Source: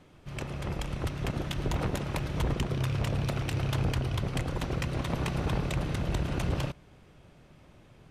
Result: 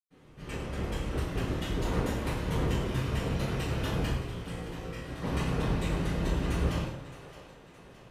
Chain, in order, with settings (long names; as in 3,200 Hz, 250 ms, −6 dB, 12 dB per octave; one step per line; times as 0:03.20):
0:04.00–0:05.11: tuned comb filter 58 Hz, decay 0.6 s, harmonics all, mix 80%
echo with a time of its own for lows and highs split 370 Hz, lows 131 ms, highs 617 ms, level −14 dB
convolution reverb RT60 0.85 s, pre-delay 103 ms